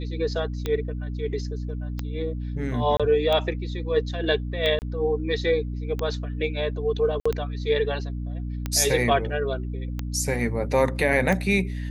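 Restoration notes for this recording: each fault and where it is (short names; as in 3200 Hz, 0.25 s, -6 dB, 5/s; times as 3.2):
hum 60 Hz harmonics 5 -30 dBFS
tick 45 rpm -14 dBFS
2.97–3 gap 26 ms
4.79–4.82 gap 29 ms
7.2–7.25 gap 55 ms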